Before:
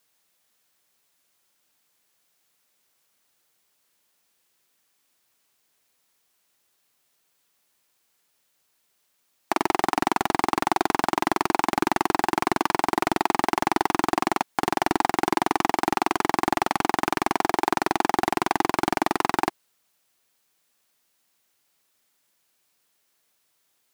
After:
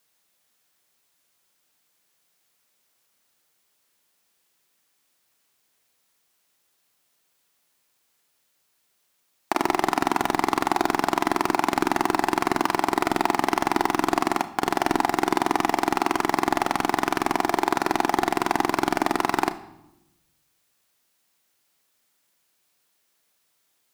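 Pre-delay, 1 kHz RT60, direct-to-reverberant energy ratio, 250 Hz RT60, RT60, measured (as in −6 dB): 32 ms, 0.85 s, 11.5 dB, 1.3 s, 0.90 s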